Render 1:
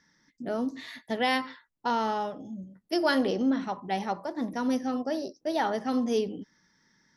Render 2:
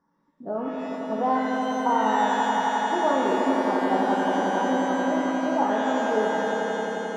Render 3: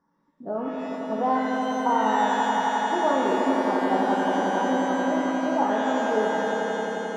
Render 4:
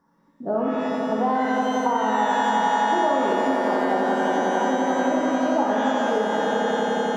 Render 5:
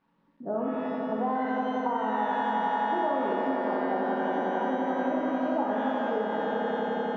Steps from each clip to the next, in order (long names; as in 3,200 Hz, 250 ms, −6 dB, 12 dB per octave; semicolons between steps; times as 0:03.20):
drawn EQ curve 100 Hz 0 dB, 1,100 Hz +11 dB, 2,000 Hz −18 dB; echo that builds up and dies away 88 ms, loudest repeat 5, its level −7 dB; reverb with rising layers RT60 1.1 s, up +12 semitones, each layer −8 dB, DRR 2 dB; level −6.5 dB
no processing that can be heard
downward compressor, threshold −25 dBFS, peak gain reduction 7.5 dB; on a send: flutter between parallel walls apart 11 metres, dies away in 0.73 s; on the sum: level +6 dB
bit reduction 11 bits; high-frequency loss of the air 310 metres; level −5.5 dB